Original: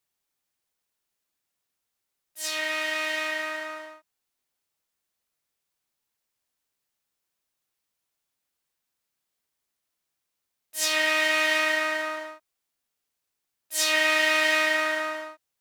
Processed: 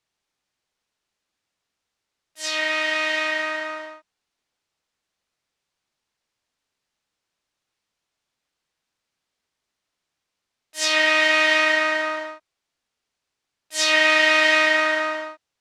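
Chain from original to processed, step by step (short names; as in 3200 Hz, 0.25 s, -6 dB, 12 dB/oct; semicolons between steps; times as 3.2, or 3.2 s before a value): LPF 6000 Hz 12 dB/oct; gain +5.5 dB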